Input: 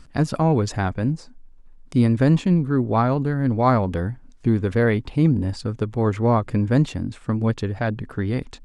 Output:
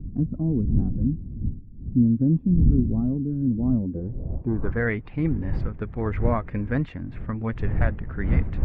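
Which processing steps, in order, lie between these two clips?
coarse spectral quantiser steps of 15 dB; wind noise 85 Hz -20 dBFS; low-pass sweep 250 Hz -> 2 kHz, 3.83–4.90 s; trim -7 dB

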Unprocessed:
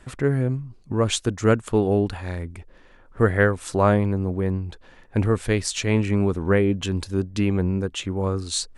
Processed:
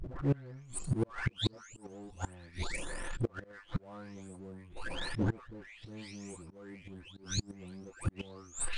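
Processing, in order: delay that grows with frequency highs late, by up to 650 ms; slow attack 338 ms; inverted gate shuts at -27 dBFS, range -38 dB; power-law waveshaper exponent 0.7; trim +6 dB; MP3 112 kbps 22.05 kHz

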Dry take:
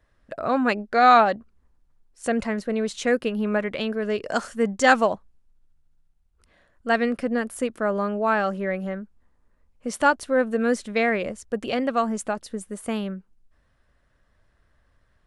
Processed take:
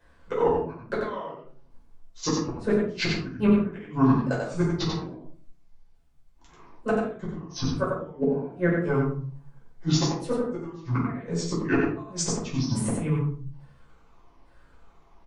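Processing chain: sawtooth pitch modulation -11.5 st, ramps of 850 ms; bass shelf 74 Hz -10.5 dB; inverted gate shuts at -19 dBFS, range -30 dB; delay 91 ms -4 dB; simulated room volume 320 m³, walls furnished, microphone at 5.1 m

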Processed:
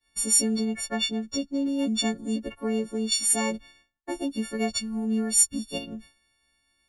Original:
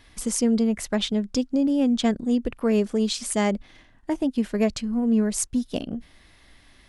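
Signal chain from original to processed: partials quantised in pitch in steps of 4 st; 0.65–1.79 s: treble shelf 8 kHz -11.5 dB; expander -37 dBFS; 2.52–3.12 s: treble shelf 2 kHz -9 dB; trim -5.5 dB

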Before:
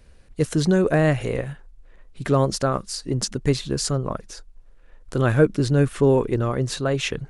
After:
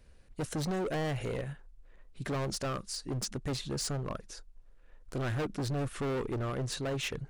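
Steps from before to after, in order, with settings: overload inside the chain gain 23 dB; trim -7.5 dB

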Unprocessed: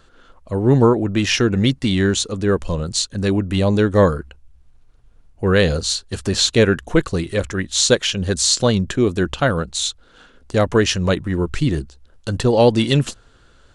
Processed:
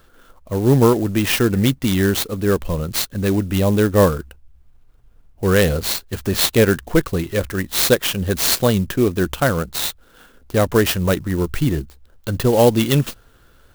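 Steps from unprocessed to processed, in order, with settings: sampling jitter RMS 0.039 ms

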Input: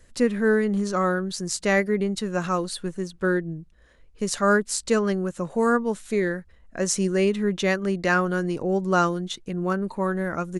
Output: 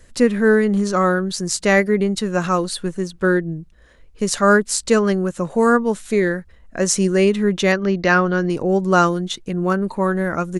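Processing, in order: 7.72–8.50 s: steep low-pass 6.3 kHz 72 dB/octave; trim +6 dB

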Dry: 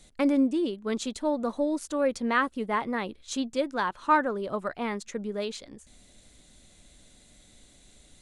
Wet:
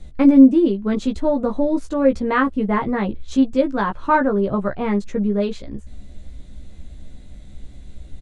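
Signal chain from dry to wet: RIAA curve playback; doubling 15 ms -3.5 dB; trim +4.5 dB

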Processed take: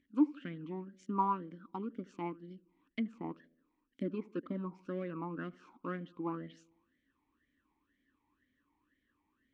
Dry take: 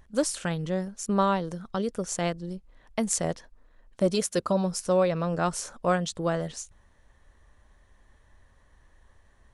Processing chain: low-pass that closes with the level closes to 1.6 kHz, closed at -24 dBFS; in parallel at -8 dB: hysteresis with a dead band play -25 dBFS; on the sum: dynamic bell 1.1 kHz, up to +5 dB, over -42 dBFS, Q 2; tape echo 77 ms, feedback 59%, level -19 dB, low-pass 1.2 kHz; talking filter i-u 2 Hz; trim +1 dB

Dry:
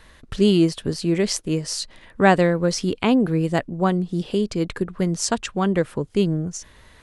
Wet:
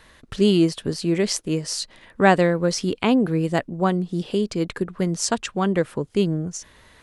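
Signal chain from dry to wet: bass shelf 77 Hz -8 dB

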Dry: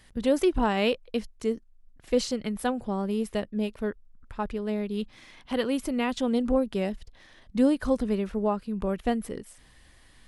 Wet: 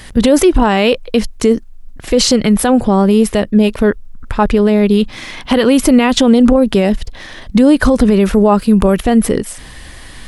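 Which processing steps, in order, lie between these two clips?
8.20–9.03 s: treble shelf 8.4 kHz +12 dB; loudness maximiser +23.5 dB; trim -1 dB

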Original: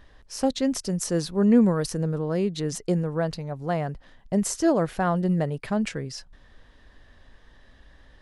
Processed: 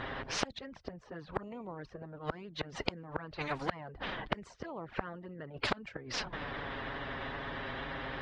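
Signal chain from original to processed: coarse spectral quantiser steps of 15 dB; touch-sensitive flanger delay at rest 8.2 ms, full sweep at -17.5 dBFS; inverted gate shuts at -25 dBFS, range -36 dB; high-pass 68 Hz 12 dB/octave; tape spacing loss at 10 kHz 32 dB; level-controlled noise filter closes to 2.7 kHz, open at -40.5 dBFS; spectrum-flattening compressor 4:1; trim +13.5 dB

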